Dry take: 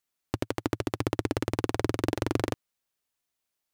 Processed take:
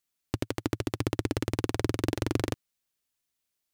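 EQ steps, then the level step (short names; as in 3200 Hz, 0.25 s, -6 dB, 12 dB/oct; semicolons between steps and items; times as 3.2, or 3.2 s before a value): bell 830 Hz -5.5 dB 2.4 oct; +1.5 dB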